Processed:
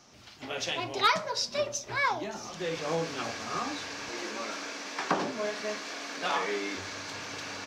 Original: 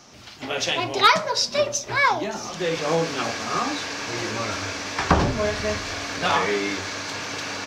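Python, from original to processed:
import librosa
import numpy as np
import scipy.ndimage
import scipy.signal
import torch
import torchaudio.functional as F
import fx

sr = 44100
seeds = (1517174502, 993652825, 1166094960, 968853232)

y = fx.highpass(x, sr, hz=210.0, slope=24, at=(4.09, 6.75))
y = y * 10.0 ** (-8.5 / 20.0)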